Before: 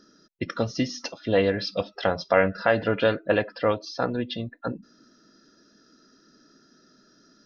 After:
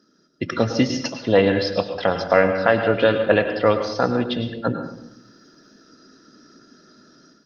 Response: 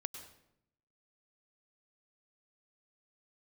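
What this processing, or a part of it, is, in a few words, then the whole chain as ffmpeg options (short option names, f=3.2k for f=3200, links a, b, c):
far-field microphone of a smart speaker: -filter_complex "[0:a]asettb=1/sr,asplit=3[a][b][c];[a]atrim=end=1.194[d];[b]atrim=start=1.19:end=1.99,asetpts=PTS-STARTPTS,afade=t=in:d=0.004:c=qsin,afade=t=out:st=0.796:d=0.004:c=qsin,adynamicequalizer=threshold=0.00708:dfrequency=890:dqfactor=2.8:tfrequency=890:tqfactor=2.8:attack=5:release=100:ratio=0.375:range=2:mode=boostabove:tftype=bell[e];[c]atrim=start=1.986[f];[d][e]acrossfade=d=0.004:c1=hsin:c2=qsin[g];[g][f]acrossfade=d=0.004:c1=qsin:c2=hsin[h];[1:a]atrim=start_sample=2205[i];[h][i]afir=irnorm=-1:irlink=0,highpass=f=91:w=0.5412,highpass=f=91:w=1.3066,dynaudnorm=f=260:g=3:m=11.5dB,volume=-1dB" -ar 48000 -c:a libopus -b:a 32k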